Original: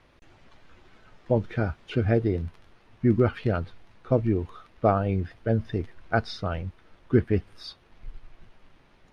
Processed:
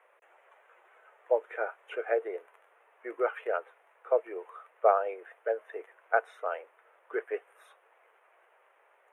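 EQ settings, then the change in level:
Butterworth high-pass 450 Hz 48 dB per octave
Butterworth band-reject 4,700 Hz, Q 0.68
0.0 dB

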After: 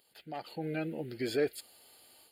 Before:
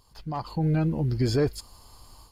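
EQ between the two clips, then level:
high-pass filter 490 Hz 12 dB per octave
phaser with its sweep stopped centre 2,500 Hz, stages 4
+2.0 dB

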